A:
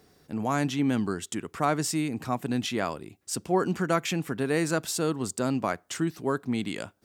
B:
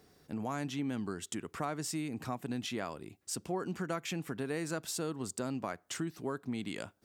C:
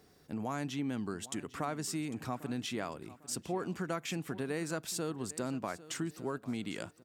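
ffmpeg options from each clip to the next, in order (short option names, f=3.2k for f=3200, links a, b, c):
-af "acompressor=threshold=-32dB:ratio=2.5,volume=-3.5dB"
-af "aecho=1:1:800|1600|2400:0.133|0.044|0.0145"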